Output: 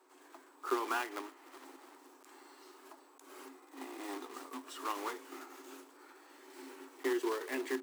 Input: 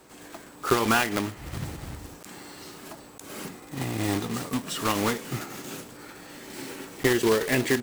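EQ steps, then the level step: rippled Chebyshev high-pass 260 Hz, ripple 9 dB; -8.0 dB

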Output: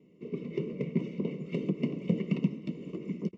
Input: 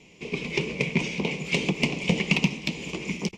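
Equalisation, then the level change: running mean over 54 samples; HPF 180 Hz 12 dB/oct; 0.0 dB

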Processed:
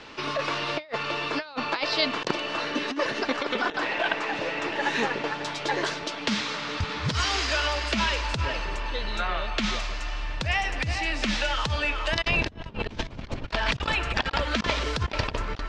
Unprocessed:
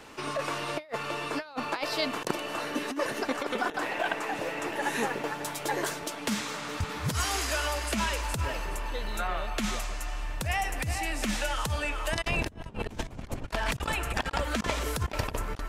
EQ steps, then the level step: LPF 4700 Hz 24 dB/oct; high shelf 3200 Hz +10 dB; notch 750 Hz, Q 16; +2.5 dB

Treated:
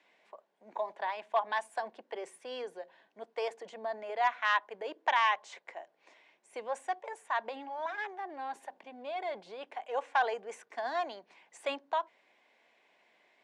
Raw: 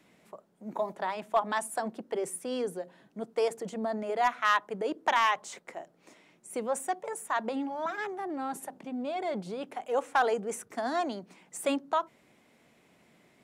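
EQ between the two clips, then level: HPF 690 Hz 12 dB/oct; LPF 3800 Hz 12 dB/oct; notch 1300 Hz, Q 5.2; 0.0 dB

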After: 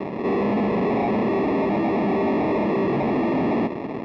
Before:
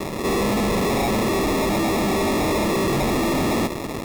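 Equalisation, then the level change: speaker cabinet 300–3900 Hz, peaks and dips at 340 Hz -4 dB, 520 Hz -5 dB, 1300 Hz -8 dB, 3700 Hz -8 dB; tilt -3.5 dB/oct; 0.0 dB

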